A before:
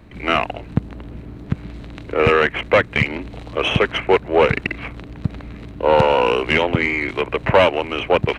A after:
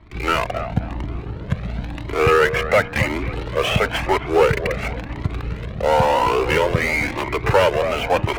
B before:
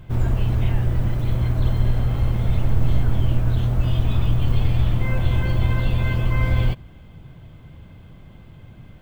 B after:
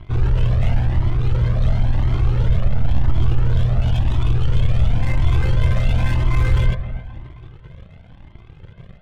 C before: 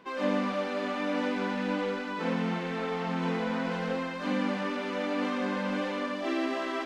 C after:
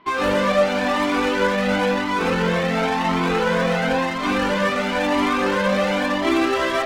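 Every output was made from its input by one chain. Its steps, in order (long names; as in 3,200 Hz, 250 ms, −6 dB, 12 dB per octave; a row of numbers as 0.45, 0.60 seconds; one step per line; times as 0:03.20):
dynamic equaliser 2,800 Hz, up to −4 dB, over −33 dBFS, Q 1.9
low-pass filter 4,300 Hz 24 dB per octave
in parallel at −8 dB: fuzz pedal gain 30 dB, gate −39 dBFS
on the sum: parametric band 260 Hz −3 dB 0.61 octaves
on a send: delay with a low-pass on its return 265 ms, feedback 40%, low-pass 2,000 Hz, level −10.5 dB
on the sum: flanger whose copies keep moving one way rising 0.96 Hz
loudness normalisation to −20 LKFS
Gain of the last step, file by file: +1.0, +1.0, +8.0 decibels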